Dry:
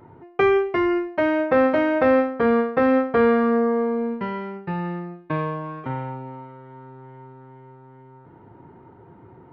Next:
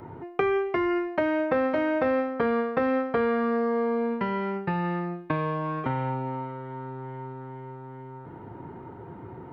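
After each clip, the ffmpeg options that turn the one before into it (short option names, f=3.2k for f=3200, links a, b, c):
-filter_complex "[0:a]acrossover=split=560|2800[a][b][c];[a]acompressor=threshold=-34dB:ratio=4[d];[b]acompressor=threshold=-36dB:ratio=4[e];[c]acompressor=threshold=-56dB:ratio=4[f];[d][e][f]amix=inputs=3:normalize=0,volume=5.5dB"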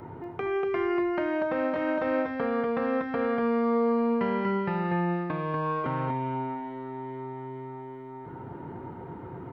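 -af "alimiter=limit=-20dB:level=0:latency=1:release=309,aecho=1:1:240:0.668"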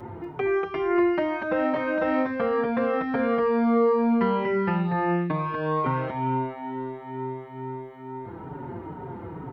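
-filter_complex "[0:a]asplit=2[a][b];[b]adelay=5.1,afreqshift=-2.2[c];[a][c]amix=inputs=2:normalize=1,volume=6.5dB"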